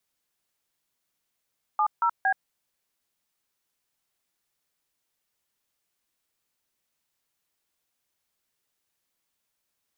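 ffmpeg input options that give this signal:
ffmpeg -f lavfi -i "aevalsrc='0.075*clip(min(mod(t,0.23),0.076-mod(t,0.23))/0.002,0,1)*(eq(floor(t/0.23),0)*(sin(2*PI*852*mod(t,0.23))+sin(2*PI*1209*mod(t,0.23)))+eq(floor(t/0.23),1)*(sin(2*PI*941*mod(t,0.23))+sin(2*PI*1336*mod(t,0.23)))+eq(floor(t/0.23),2)*(sin(2*PI*770*mod(t,0.23))+sin(2*PI*1633*mod(t,0.23))))':duration=0.69:sample_rate=44100" out.wav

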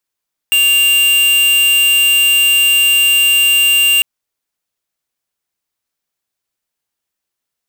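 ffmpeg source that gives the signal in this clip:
ffmpeg -f lavfi -i "aevalsrc='0.299*(2*lt(mod(2790*t,1),0.5)-1)':duration=3.5:sample_rate=44100" out.wav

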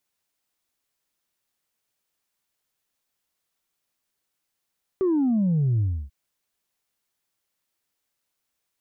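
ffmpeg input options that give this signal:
ffmpeg -f lavfi -i "aevalsrc='0.112*clip((1.09-t)/0.3,0,1)*tanh(1.06*sin(2*PI*390*1.09/log(65/390)*(exp(log(65/390)*t/1.09)-1)))/tanh(1.06)':duration=1.09:sample_rate=44100" out.wav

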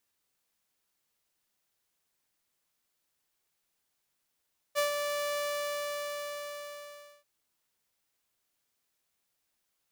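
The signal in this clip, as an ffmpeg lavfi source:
ffmpeg -f lavfi -i "aevalsrc='0.0794*(2*mod(583*t,1)-1)':duration=2.49:sample_rate=44100,afade=type=in:duration=0.035,afade=type=out:start_time=0.035:duration=0.12:silence=0.501,afade=type=out:start_time=0.62:duration=1.87" out.wav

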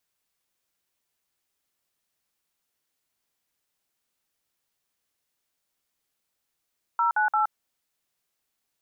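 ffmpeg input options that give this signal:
ffmpeg -f lavfi -i "aevalsrc='0.075*clip(min(mod(t,0.173),0.12-mod(t,0.173))/0.002,0,1)*(eq(floor(t/0.173),0)*(sin(2*PI*941*mod(t,0.173))+sin(2*PI*1336*mod(t,0.173)))+eq(floor(t/0.173),1)*(sin(2*PI*852*mod(t,0.173))+sin(2*PI*1477*mod(t,0.173)))+eq(floor(t/0.173),2)*(sin(2*PI*852*mod(t,0.173))+sin(2*PI*1336*mod(t,0.173))))':duration=0.519:sample_rate=44100" out.wav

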